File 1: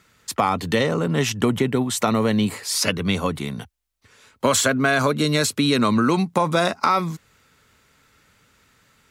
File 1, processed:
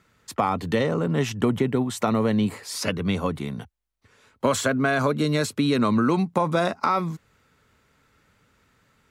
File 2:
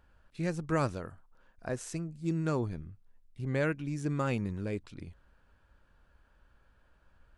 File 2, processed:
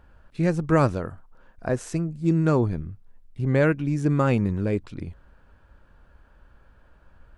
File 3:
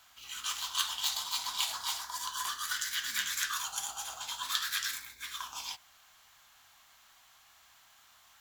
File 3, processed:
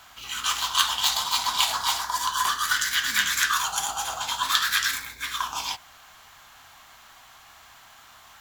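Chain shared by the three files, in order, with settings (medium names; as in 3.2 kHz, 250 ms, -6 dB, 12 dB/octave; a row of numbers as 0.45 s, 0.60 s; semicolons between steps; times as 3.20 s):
treble shelf 2.1 kHz -8 dB; normalise loudness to -24 LUFS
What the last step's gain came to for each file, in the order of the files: -1.5 dB, +10.5 dB, +15.5 dB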